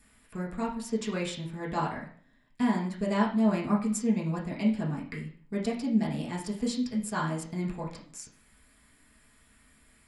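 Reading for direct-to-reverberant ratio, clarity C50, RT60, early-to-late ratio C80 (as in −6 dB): −4.5 dB, 7.0 dB, 0.50 s, 12.0 dB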